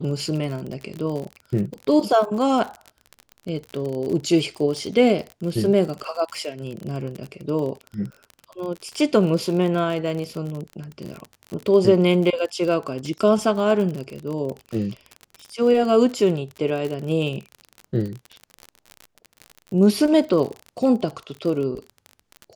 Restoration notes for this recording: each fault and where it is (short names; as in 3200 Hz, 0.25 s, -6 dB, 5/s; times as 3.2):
crackle 42/s -28 dBFS